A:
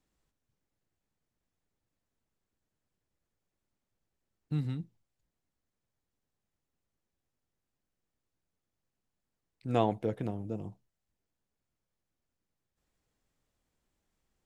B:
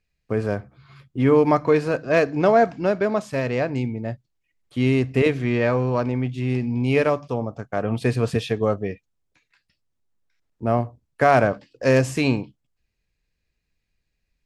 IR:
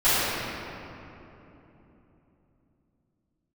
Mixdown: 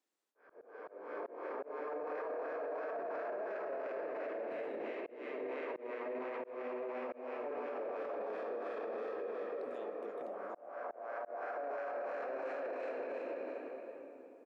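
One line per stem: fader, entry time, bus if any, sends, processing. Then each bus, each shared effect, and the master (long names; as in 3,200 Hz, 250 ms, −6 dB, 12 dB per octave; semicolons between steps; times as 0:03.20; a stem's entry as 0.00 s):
−4.5 dB, 0.00 s, no send, downward compressor, threshold −39 dBFS, peak gain reduction 17 dB
+2.0 dB, 0.35 s, send −15.5 dB, spectrum smeared in time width 1,290 ms; LFO wah 2.9 Hz 540–1,500 Hz, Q 2.2; reverb reduction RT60 1.1 s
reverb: on, RT60 3.3 s, pre-delay 4 ms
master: high-pass filter 300 Hz 24 dB per octave; volume swells 520 ms; brickwall limiter −33.5 dBFS, peak gain reduction 21 dB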